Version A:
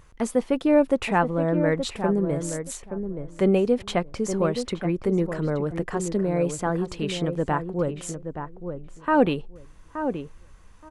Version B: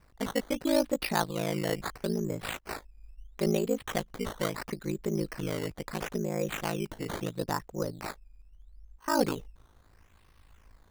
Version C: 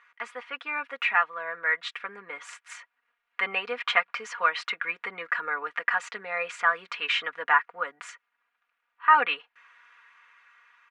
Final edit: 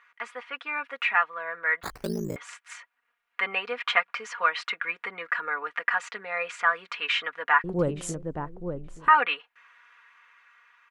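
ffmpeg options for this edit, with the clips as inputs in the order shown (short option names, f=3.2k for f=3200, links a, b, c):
-filter_complex "[2:a]asplit=3[a][b][c];[a]atrim=end=1.832[d];[1:a]atrim=start=1.828:end=2.362[e];[b]atrim=start=2.358:end=7.642[f];[0:a]atrim=start=7.638:end=9.082[g];[c]atrim=start=9.078[h];[d][e]acrossfade=d=0.004:c1=hsin:c2=hsin[i];[i][f]acrossfade=d=0.004:c1=hsin:c2=hsin[j];[j][g]acrossfade=d=0.004:c1=hsin:c2=hsin[k];[k][h]acrossfade=d=0.004:c1=hsin:c2=hsin"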